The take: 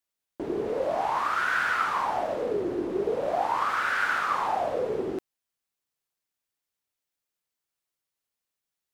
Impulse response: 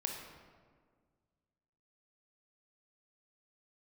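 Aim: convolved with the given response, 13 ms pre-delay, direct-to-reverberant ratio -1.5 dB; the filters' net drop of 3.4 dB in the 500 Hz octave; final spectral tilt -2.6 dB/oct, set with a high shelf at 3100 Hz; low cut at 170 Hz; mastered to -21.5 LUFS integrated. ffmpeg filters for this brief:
-filter_complex "[0:a]highpass=170,equalizer=f=500:t=o:g=-4.5,highshelf=f=3.1k:g=7,asplit=2[a][b];[1:a]atrim=start_sample=2205,adelay=13[c];[b][c]afir=irnorm=-1:irlink=0,volume=0dB[d];[a][d]amix=inputs=2:normalize=0,volume=2.5dB"

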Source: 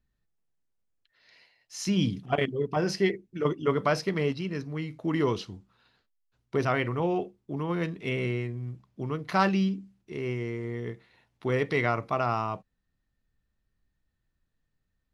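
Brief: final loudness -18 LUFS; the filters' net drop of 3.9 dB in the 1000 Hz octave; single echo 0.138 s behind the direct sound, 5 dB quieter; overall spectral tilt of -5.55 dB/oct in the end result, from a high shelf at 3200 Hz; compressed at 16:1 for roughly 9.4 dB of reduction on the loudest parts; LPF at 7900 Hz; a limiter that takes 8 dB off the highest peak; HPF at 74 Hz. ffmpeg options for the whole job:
-af "highpass=74,lowpass=7.9k,equalizer=f=1k:t=o:g=-6,highshelf=f=3.2k:g=3.5,acompressor=threshold=-30dB:ratio=16,alimiter=level_in=3dB:limit=-24dB:level=0:latency=1,volume=-3dB,aecho=1:1:138:0.562,volume=19.5dB"

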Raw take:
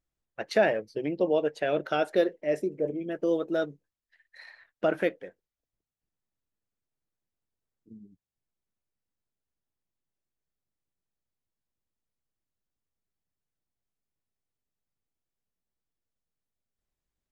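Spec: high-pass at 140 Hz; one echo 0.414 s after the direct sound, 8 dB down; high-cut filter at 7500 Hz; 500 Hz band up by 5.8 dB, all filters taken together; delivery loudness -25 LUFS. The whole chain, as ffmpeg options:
-af "highpass=140,lowpass=7.5k,equalizer=f=500:t=o:g=7,aecho=1:1:414:0.398,volume=-1.5dB"

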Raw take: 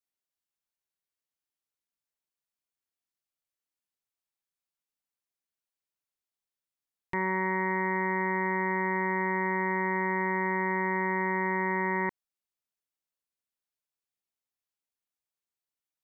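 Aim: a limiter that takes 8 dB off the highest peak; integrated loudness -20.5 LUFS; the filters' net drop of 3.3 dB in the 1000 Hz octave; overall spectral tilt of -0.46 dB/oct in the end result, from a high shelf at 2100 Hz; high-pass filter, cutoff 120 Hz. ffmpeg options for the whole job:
-af "highpass=120,equalizer=f=1k:t=o:g=-5,highshelf=f=2.1k:g=8.5,volume=15.5dB,alimiter=limit=-10.5dB:level=0:latency=1"

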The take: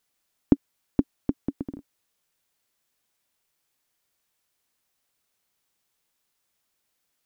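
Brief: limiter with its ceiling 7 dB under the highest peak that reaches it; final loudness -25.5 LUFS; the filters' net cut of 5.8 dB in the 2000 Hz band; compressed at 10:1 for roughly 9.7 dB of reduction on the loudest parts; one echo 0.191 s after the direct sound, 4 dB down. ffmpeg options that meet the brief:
-af "equalizer=f=2k:t=o:g=-8,acompressor=threshold=-23dB:ratio=10,alimiter=limit=-15dB:level=0:latency=1,aecho=1:1:191:0.631,volume=13.5dB"

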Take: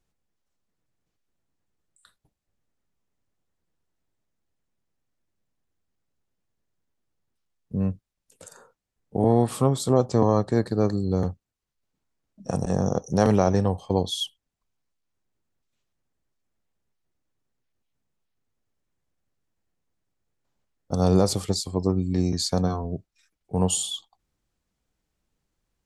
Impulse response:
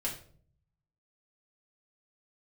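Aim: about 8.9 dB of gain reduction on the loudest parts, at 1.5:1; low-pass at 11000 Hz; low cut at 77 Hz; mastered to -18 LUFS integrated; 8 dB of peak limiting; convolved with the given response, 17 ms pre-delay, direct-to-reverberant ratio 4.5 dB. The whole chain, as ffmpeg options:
-filter_complex "[0:a]highpass=77,lowpass=11k,acompressor=threshold=-40dB:ratio=1.5,alimiter=limit=-23.5dB:level=0:latency=1,asplit=2[a][b];[1:a]atrim=start_sample=2205,adelay=17[c];[b][c]afir=irnorm=-1:irlink=0,volume=-7.5dB[d];[a][d]amix=inputs=2:normalize=0,volume=15dB"

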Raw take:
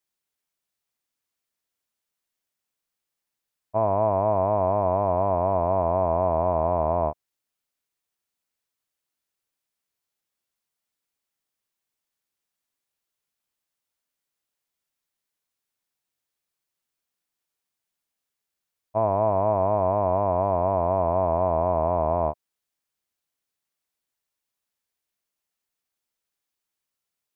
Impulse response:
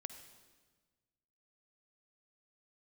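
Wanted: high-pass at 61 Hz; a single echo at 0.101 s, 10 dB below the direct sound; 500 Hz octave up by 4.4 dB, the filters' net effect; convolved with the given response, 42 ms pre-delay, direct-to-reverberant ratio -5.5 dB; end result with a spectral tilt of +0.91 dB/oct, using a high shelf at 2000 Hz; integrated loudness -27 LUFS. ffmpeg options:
-filter_complex "[0:a]highpass=61,equalizer=f=500:t=o:g=7.5,highshelf=f=2k:g=-9,aecho=1:1:101:0.316,asplit=2[a][b];[1:a]atrim=start_sample=2205,adelay=42[c];[b][c]afir=irnorm=-1:irlink=0,volume=9dB[d];[a][d]amix=inputs=2:normalize=0,volume=-14dB"

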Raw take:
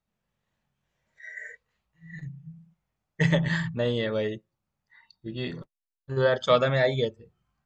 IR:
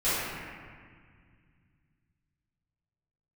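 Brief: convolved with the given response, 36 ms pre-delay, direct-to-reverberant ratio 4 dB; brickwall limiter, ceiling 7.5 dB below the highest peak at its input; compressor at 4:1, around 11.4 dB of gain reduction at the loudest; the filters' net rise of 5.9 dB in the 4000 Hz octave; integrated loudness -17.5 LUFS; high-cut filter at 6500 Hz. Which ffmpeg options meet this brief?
-filter_complex "[0:a]lowpass=6.5k,equalizer=f=4k:t=o:g=7.5,acompressor=threshold=-30dB:ratio=4,alimiter=level_in=1dB:limit=-24dB:level=0:latency=1,volume=-1dB,asplit=2[a][b];[1:a]atrim=start_sample=2205,adelay=36[c];[b][c]afir=irnorm=-1:irlink=0,volume=-17.5dB[d];[a][d]amix=inputs=2:normalize=0,volume=18dB"

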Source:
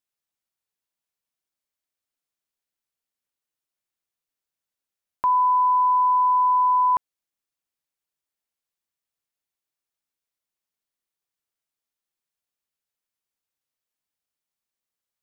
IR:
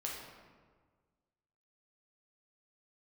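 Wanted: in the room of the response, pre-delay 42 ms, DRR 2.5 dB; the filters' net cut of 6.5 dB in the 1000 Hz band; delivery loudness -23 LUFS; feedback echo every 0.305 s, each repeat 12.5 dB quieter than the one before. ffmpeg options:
-filter_complex "[0:a]equalizer=f=1k:t=o:g=-6.5,aecho=1:1:305|610|915:0.237|0.0569|0.0137,asplit=2[a][b];[1:a]atrim=start_sample=2205,adelay=42[c];[b][c]afir=irnorm=-1:irlink=0,volume=-3.5dB[d];[a][d]amix=inputs=2:normalize=0,volume=-3dB"

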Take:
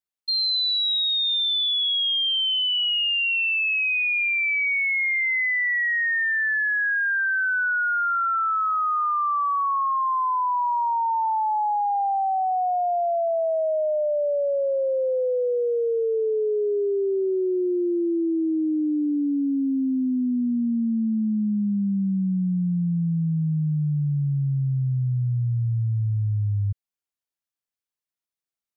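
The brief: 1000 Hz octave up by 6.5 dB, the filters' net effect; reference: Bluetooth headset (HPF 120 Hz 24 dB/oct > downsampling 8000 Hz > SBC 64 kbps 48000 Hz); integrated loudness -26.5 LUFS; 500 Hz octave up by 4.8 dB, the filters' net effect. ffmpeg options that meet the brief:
-af "highpass=f=120:w=0.5412,highpass=f=120:w=1.3066,equalizer=f=500:t=o:g=4,equalizer=f=1k:t=o:g=7,aresample=8000,aresample=44100,volume=-7dB" -ar 48000 -c:a sbc -b:a 64k

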